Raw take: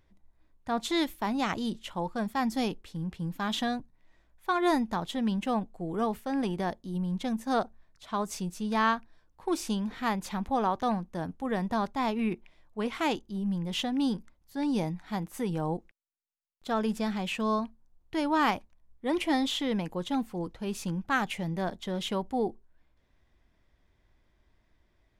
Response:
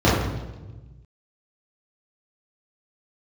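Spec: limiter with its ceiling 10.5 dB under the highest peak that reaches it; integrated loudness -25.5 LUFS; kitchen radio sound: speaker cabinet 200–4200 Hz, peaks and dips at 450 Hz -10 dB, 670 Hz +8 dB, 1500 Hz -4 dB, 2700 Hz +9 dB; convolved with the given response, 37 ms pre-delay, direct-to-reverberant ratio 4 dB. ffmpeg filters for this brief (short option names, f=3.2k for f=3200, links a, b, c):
-filter_complex "[0:a]alimiter=level_in=0.5dB:limit=-24dB:level=0:latency=1,volume=-0.5dB,asplit=2[a][b];[1:a]atrim=start_sample=2205,adelay=37[c];[b][c]afir=irnorm=-1:irlink=0,volume=-26.5dB[d];[a][d]amix=inputs=2:normalize=0,highpass=200,equalizer=f=450:t=q:w=4:g=-10,equalizer=f=670:t=q:w=4:g=8,equalizer=f=1.5k:t=q:w=4:g=-4,equalizer=f=2.7k:t=q:w=4:g=9,lowpass=f=4.2k:w=0.5412,lowpass=f=4.2k:w=1.3066,volume=5.5dB"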